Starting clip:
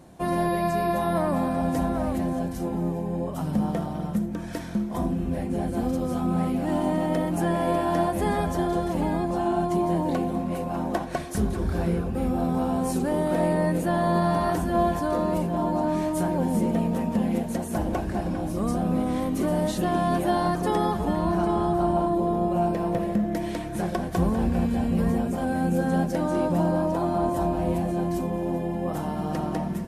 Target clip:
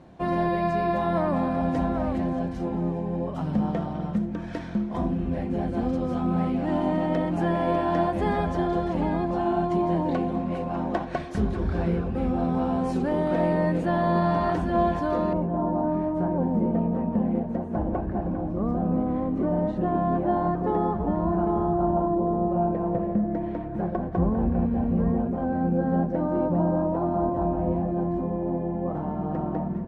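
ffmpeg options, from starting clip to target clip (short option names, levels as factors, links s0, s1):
-af "asetnsamples=n=441:p=0,asendcmd='15.33 lowpass f 1100',lowpass=3600"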